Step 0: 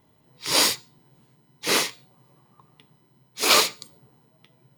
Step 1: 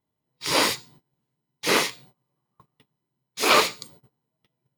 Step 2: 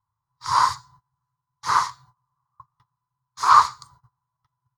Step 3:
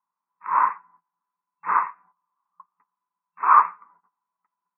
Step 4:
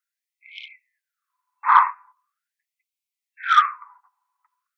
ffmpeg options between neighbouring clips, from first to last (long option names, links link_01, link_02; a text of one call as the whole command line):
ffmpeg -i in.wav -filter_complex "[0:a]agate=range=-23dB:threshold=-52dB:ratio=16:detection=peak,acrossover=split=2900[link_01][link_02];[link_02]acompressor=threshold=-27dB:ratio=4:attack=1:release=60[link_03];[link_01][link_03]amix=inputs=2:normalize=0,volume=3dB" out.wav
ffmpeg -i in.wav -af "firequalizer=gain_entry='entry(110,0);entry(210,-28);entry(570,-27);entry(1000,7);entry(2500,-27);entry(4300,-12);entry(6200,-10);entry(13000,-26)':delay=0.05:min_phase=1,volume=6dB" out.wav
ffmpeg -i in.wav -af "afftfilt=real='re*between(b*sr/4096,170,2700)':imag='im*between(b*sr/4096,170,2700)':win_size=4096:overlap=0.75,volume=-1dB" out.wav
ffmpeg -i in.wav -af "acontrast=41,afftfilt=real='re*gte(b*sr/1024,700*pow(2100/700,0.5+0.5*sin(2*PI*0.42*pts/sr)))':imag='im*gte(b*sr/1024,700*pow(2100/700,0.5+0.5*sin(2*PI*0.42*pts/sr)))':win_size=1024:overlap=0.75,volume=2dB" out.wav